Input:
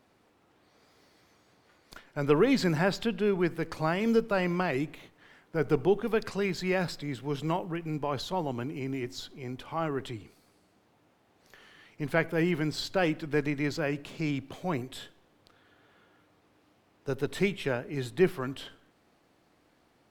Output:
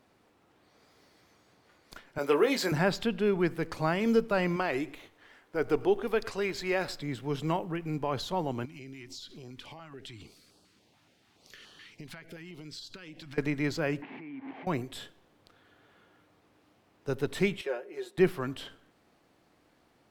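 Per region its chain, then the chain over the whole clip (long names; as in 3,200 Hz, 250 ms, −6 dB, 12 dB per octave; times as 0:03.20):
0:02.18–0:02.72: Chebyshev high-pass filter 430 Hz + high-shelf EQ 7,900 Hz +10 dB + double-tracking delay 21 ms −7.5 dB
0:04.56–0:07.00: parametric band 160 Hz −12 dB 0.73 octaves + single-tap delay 111 ms −20.5 dB
0:08.65–0:13.38: parametric band 4,400 Hz +9 dB 2.2 octaves + downward compressor 12 to 1, threshold −40 dBFS + notch on a step sequencer 7 Hz 430–2,100 Hz
0:14.02–0:14.67: linear delta modulator 64 kbit/s, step −36 dBFS + downward compressor 8 to 1, threshold −41 dBFS + loudspeaker in its box 260–2,300 Hz, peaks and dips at 260 Hz +10 dB, 560 Hz −9 dB, 840 Hz +7 dB, 1,300 Hz −6 dB, 2,100 Hz +6 dB
0:17.61–0:18.18: four-pole ladder high-pass 350 Hz, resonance 45% + comb filter 5.5 ms, depth 77%
whole clip: no processing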